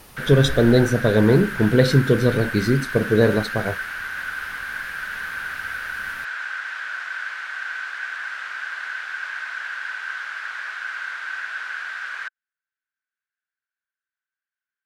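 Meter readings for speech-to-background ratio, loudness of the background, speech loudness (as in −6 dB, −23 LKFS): 10.5 dB, −29.0 LKFS, −18.5 LKFS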